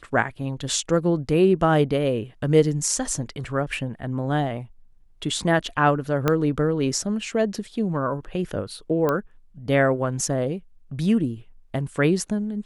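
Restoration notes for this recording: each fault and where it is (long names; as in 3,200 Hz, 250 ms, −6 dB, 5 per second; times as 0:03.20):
0:06.28: click −7 dBFS
0:09.09: click −11 dBFS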